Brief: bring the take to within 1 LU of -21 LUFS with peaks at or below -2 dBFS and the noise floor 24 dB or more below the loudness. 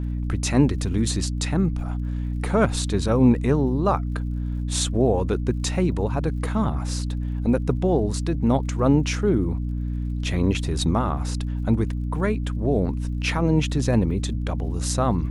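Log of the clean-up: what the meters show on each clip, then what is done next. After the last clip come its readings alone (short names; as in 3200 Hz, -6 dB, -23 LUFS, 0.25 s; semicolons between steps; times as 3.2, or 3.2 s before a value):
ticks 59/s; hum 60 Hz; harmonics up to 300 Hz; hum level -24 dBFS; loudness -23.5 LUFS; peak -4.5 dBFS; loudness target -21.0 LUFS
-> de-click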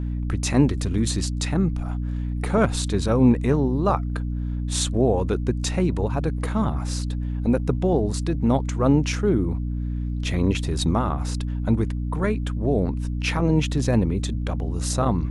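ticks 0.20/s; hum 60 Hz; harmonics up to 300 Hz; hum level -24 dBFS
-> notches 60/120/180/240/300 Hz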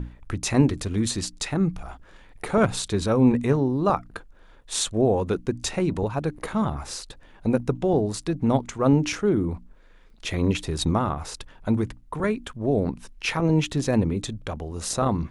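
hum none; loudness -25.0 LUFS; peak -5.0 dBFS; loudness target -21.0 LUFS
-> gain +4 dB; limiter -2 dBFS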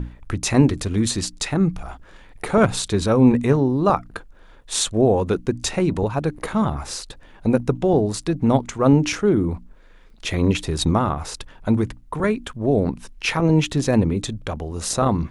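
loudness -21.0 LUFS; peak -2.0 dBFS; noise floor -47 dBFS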